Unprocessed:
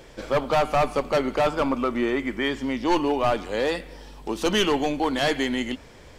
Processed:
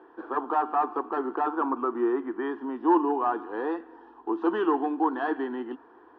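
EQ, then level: cabinet simulation 310–2100 Hz, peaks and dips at 330 Hz +8 dB, 700 Hz +4 dB, 1 kHz +5 dB, 1.7 kHz +6 dB; static phaser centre 580 Hz, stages 6; -2.5 dB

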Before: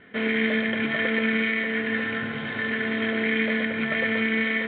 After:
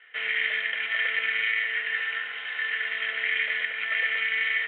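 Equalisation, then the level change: cabinet simulation 440–3600 Hz, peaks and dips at 470 Hz +6 dB, 780 Hz +6 dB, 1.3 kHz +7 dB, 1.9 kHz +9 dB, 2.8 kHz +10 dB; differentiator; +3.5 dB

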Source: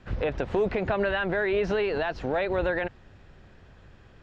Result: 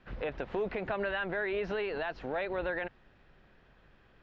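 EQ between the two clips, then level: distance through air 170 m; tilt shelf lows -3 dB; peaking EQ 87 Hz -10.5 dB 0.72 oct; -5.5 dB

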